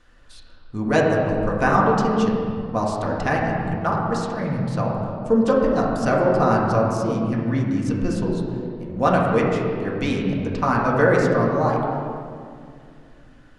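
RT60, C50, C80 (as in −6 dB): 2.3 s, 0.5 dB, 2.0 dB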